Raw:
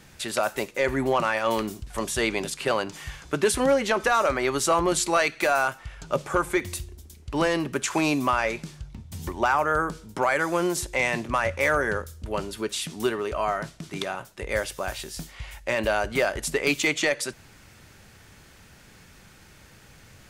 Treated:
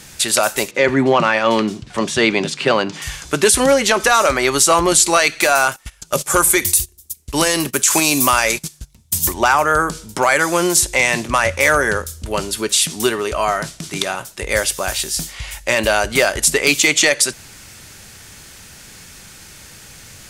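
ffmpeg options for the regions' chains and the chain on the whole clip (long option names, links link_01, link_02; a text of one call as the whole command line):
ffmpeg -i in.wav -filter_complex "[0:a]asettb=1/sr,asplit=3[link_01][link_02][link_03];[link_01]atrim=end=0.714[link_04];[link_02]atrim=start=0.71:end=3.02,asetpts=PTS-STARTPTS,afade=type=in:duration=0.004:curve=qsin,afade=type=out:start_time=2.306:duration=0.004:curve=qsin,highpass=130,lowpass=3800,equalizer=frequency=170:width=0.66:gain=6.5[link_05];[link_03]atrim=start=3.016[link_06];[link_04][link_05]acrossfade=duration=0.004:curve1=hsin:curve2=qsin[link_07];[link_07][link_06]acrossfade=duration=0.004:curve1=qsin:curve2=hsin,asettb=1/sr,asplit=3[link_08][link_09][link_10];[link_08]atrim=end=5.764[link_11];[link_09]atrim=start=5.76:end=9.34,asetpts=PTS-STARTPTS,afade=type=in:duration=0.004:curve=qsin,afade=type=out:start_time=3.576:duration=0.004:curve=qsin,aemphasis=mode=production:type=50fm,agate=range=-18dB:threshold=-36dB:ratio=16:release=100:detection=peak[link_12];[link_10]atrim=start=9.336[link_13];[link_11][link_12]acrossfade=duration=0.004:curve1=hsin:curve2=qsin[link_14];[link_14][link_13]acrossfade=duration=0.004:curve1=qsin:curve2=hsin,equalizer=frequency=9000:width=0.34:gain=11.5,alimiter=level_in=8dB:limit=-1dB:release=50:level=0:latency=1,volume=-1dB" out.wav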